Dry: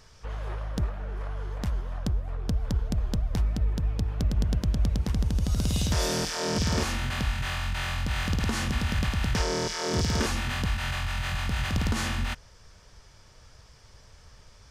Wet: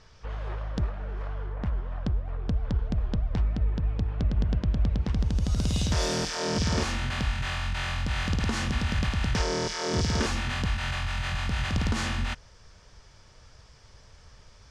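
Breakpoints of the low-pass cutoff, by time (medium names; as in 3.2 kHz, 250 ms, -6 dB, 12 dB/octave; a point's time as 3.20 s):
1.28 s 5.1 kHz
1.54 s 2 kHz
2.06 s 3.4 kHz
4.98 s 3.4 kHz
5.40 s 7.8 kHz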